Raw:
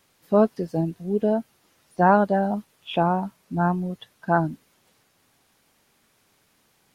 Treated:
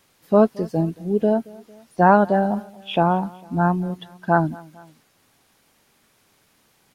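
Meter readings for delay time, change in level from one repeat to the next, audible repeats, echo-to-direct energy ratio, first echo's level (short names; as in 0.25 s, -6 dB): 0.226 s, -5.0 dB, 2, -22.0 dB, -23.0 dB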